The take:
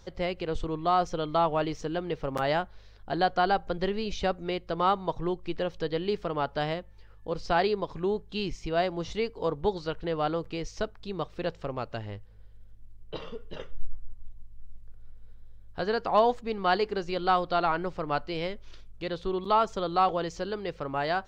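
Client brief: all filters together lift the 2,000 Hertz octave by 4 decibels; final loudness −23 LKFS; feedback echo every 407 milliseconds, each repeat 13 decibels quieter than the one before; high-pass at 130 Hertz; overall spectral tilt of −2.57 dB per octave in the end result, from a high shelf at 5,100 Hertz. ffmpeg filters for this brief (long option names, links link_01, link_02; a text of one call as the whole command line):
ffmpeg -i in.wav -af "highpass=130,equalizer=frequency=2000:width_type=o:gain=4.5,highshelf=frequency=5100:gain=8,aecho=1:1:407|814|1221:0.224|0.0493|0.0108,volume=5.5dB" out.wav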